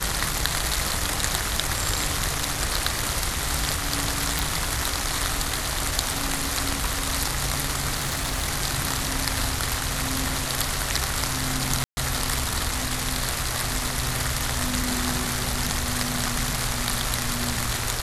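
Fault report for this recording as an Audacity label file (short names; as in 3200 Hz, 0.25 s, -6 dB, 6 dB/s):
4.390000	4.390000	pop
7.970000	8.460000	clipped -20.5 dBFS
11.840000	11.970000	gap 0.13 s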